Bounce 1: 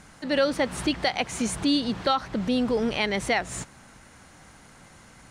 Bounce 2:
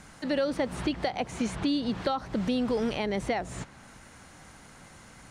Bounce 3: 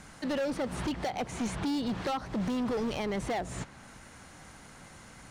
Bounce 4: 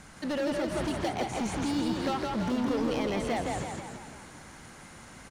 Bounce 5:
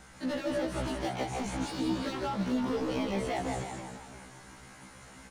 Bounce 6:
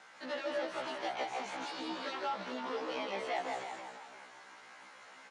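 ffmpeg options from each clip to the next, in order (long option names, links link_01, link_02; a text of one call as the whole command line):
ffmpeg -i in.wav -filter_complex "[0:a]acrossover=split=900|4800[link_01][link_02][link_03];[link_01]acompressor=threshold=-25dB:ratio=4[link_04];[link_02]acompressor=threshold=-38dB:ratio=4[link_05];[link_03]acompressor=threshold=-51dB:ratio=4[link_06];[link_04][link_05][link_06]amix=inputs=3:normalize=0" out.wav
ffmpeg -i in.wav -af "volume=28dB,asoftclip=hard,volume=-28dB" out.wav
ffmpeg -i in.wav -filter_complex "[0:a]asplit=9[link_01][link_02][link_03][link_04][link_05][link_06][link_07][link_08][link_09];[link_02]adelay=165,afreqshift=32,volume=-3dB[link_10];[link_03]adelay=330,afreqshift=64,volume=-8.2dB[link_11];[link_04]adelay=495,afreqshift=96,volume=-13.4dB[link_12];[link_05]adelay=660,afreqshift=128,volume=-18.6dB[link_13];[link_06]adelay=825,afreqshift=160,volume=-23.8dB[link_14];[link_07]adelay=990,afreqshift=192,volume=-29dB[link_15];[link_08]adelay=1155,afreqshift=224,volume=-34.2dB[link_16];[link_09]adelay=1320,afreqshift=256,volume=-39.3dB[link_17];[link_01][link_10][link_11][link_12][link_13][link_14][link_15][link_16][link_17]amix=inputs=9:normalize=0" out.wav
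ffmpeg -i in.wav -af "afftfilt=real='re*1.73*eq(mod(b,3),0)':imag='im*1.73*eq(mod(b,3),0)':win_size=2048:overlap=0.75" out.wav
ffmpeg -i in.wav -af "highpass=590,lowpass=4500" out.wav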